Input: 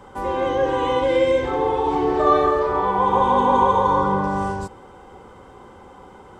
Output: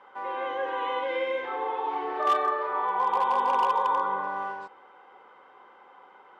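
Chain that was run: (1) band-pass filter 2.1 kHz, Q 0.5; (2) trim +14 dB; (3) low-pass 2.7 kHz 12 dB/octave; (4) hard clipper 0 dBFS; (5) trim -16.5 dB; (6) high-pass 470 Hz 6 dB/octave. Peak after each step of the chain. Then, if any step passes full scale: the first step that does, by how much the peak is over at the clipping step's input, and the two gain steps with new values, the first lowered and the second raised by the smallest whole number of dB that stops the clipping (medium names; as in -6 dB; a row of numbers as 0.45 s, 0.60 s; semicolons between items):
-7.5 dBFS, +6.5 dBFS, +6.5 dBFS, 0.0 dBFS, -16.5 dBFS, -14.5 dBFS; step 2, 6.5 dB; step 2 +7 dB, step 5 -9.5 dB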